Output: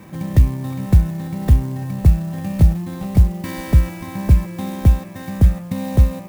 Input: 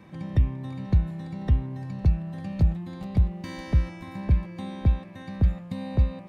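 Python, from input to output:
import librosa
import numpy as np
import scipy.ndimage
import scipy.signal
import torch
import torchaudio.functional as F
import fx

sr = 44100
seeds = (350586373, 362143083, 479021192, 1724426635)

y = fx.clock_jitter(x, sr, seeds[0], jitter_ms=0.042)
y = y * librosa.db_to_amplitude(9.0)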